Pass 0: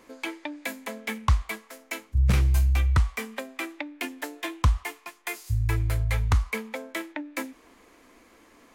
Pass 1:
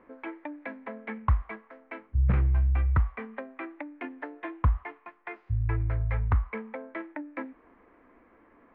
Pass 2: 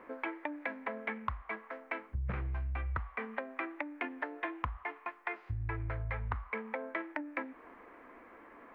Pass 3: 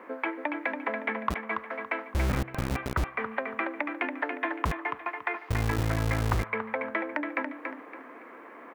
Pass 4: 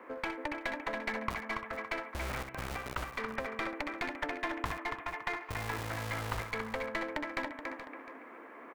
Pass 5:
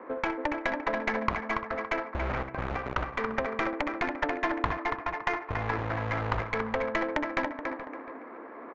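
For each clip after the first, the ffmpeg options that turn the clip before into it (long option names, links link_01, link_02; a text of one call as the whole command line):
ffmpeg -i in.wav -af "lowpass=frequency=1900:width=0.5412,lowpass=frequency=1900:width=1.3066,volume=-2.5dB" out.wav
ffmpeg -i in.wav -af "lowshelf=frequency=290:gain=-12,acompressor=threshold=-41dB:ratio=8,volume=7.5dB" out.wav
ffmpeg -i in.wav -filter_complex "[0:a]aecho=1:1:282|564|846|1128:0.501|0.155|0.0482|0.0149,acrossover=split=160|700[link_01][link_02][link_03];[link_01]acrusher=bits=5:mix=0:aa=0.000001[link_04];[link_04][link_02][link_03]amix=inputs=3:normalize=0,volume=7dB" out.wav
ffmpeg -i in.wav -filter_complex "[0:a]acrossover=split=500|1400[link_01][link_02][link_03];[link_01]acompressor=threshold=-36dB:ratio=6[link_04];[link_04][link_02][link_03]amix=inputs=3:normalize=0,aeval=exprs='clip(val(0),-1,0.0299)':channel_layout=same,aecho=1:1:63|426:0.376|0.266,volume=-4dB" out.wav
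ffmpeg -i in.wav -af "adynamicsmooth=sensitivity=2.5:basefreq=1500,bass=frequency=250:gain=-2,treble=frequency=4000:gain=-5,aresample=16000,aresample=44100,volume=8.5dB" out.wav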